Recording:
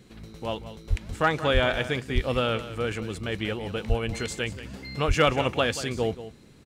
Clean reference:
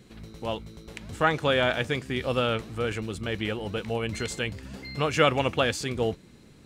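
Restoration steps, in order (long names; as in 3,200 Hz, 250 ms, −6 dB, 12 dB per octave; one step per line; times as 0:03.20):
clipped peaks rebuilt −11 dBFS
high-pass at the plosives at 0:00.89/0:01.53/0:02.14/0:03.88/0:05.07
echo removal 183 ms −13.5 dB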